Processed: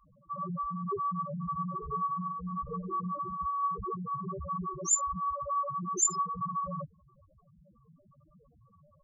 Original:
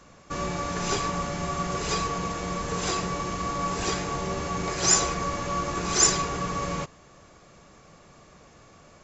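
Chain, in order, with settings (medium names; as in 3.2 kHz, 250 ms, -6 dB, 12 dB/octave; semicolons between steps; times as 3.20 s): loudest bins only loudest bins 2; 1.77–3.20 s: hum notches 50/100/150/200/250/300/350/400/450 Hz; trim +1 dB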